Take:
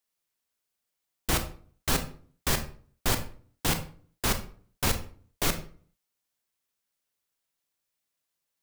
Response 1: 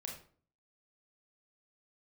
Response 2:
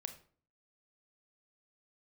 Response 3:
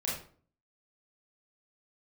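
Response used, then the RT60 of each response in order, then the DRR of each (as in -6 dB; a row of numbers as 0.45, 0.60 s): 2; 0.45, 0.45, 0.45 s; -0.5, 7.5, -6.0 dB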